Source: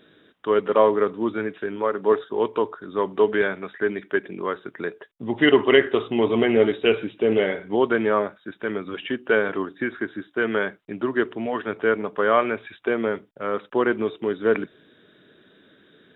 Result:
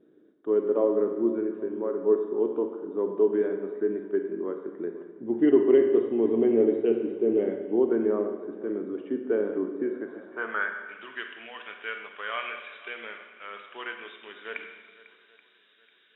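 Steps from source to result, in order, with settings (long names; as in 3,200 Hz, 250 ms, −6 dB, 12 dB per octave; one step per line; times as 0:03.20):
on a send: feedback echo with a long and a short gap by turns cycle 831 ms, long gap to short 1.5 to 1, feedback 33%, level −19.5 dB
on the sum: pitch vibrato 0.34 Hz 11 cents
band-pass filter sweep 330 Hz → 2,700 Hz, 0:09.78–0:10.98
four-comb reverb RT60 1.3 s, combs from 31 ms, DRR 5 dB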